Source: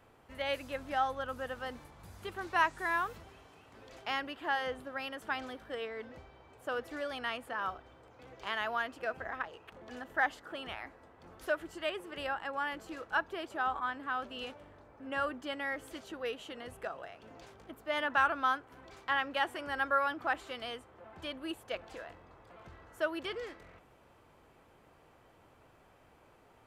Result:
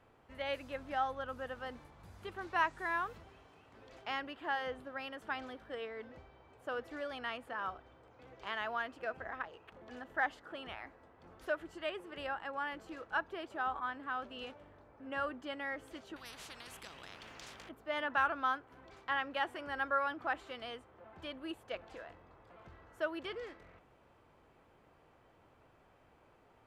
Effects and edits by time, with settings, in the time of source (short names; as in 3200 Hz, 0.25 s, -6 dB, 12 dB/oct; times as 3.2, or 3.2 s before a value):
16.16–17.69 spectral compressor 10:1
whole clip: high shelf 6500 Hz -10 dB; gain -3 dB